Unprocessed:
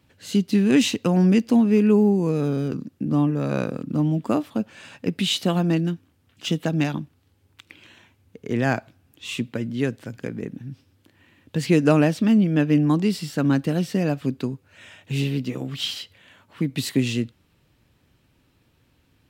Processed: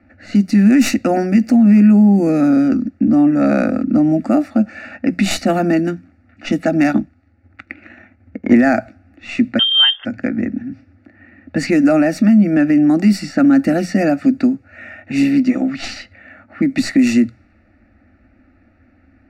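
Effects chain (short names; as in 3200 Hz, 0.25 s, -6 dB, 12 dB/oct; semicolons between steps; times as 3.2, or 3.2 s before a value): tracing distortion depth 0.038 ms; low-pass opened by the level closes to 2200 Hz, open at -17.5 dBFS; low shelf 440 Hz +5.5 dB; notches 60/120/180 Hz; 11.88–12.53 compressor, threshold -13 dBFS, peak gain reduction 5 dB; fixed phaser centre 650 Hz, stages 8; limiter -16.5 dBFS, peak gain reduction 10.5 dB; 6.88–8.7 transient shaper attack +5 dB, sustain -4 dB; reverb RT60 0.10 s, pre-delay 3 ms, DRR 17 dB; 9.59–10.05 inverted band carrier 3400 Hz; gain +7 dB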